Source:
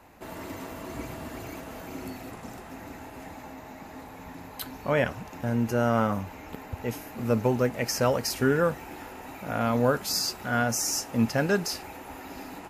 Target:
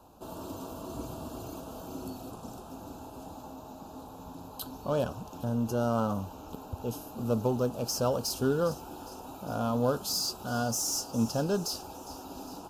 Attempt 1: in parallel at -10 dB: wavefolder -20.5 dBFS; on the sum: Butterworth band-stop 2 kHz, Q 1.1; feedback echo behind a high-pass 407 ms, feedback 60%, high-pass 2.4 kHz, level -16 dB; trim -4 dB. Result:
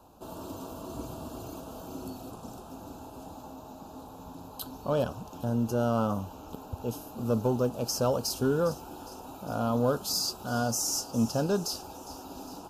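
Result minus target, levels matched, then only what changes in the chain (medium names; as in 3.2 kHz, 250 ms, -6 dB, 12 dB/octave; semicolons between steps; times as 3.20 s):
wavefolder: distortion -13 dB
change: wavefolder -27.5 dBFS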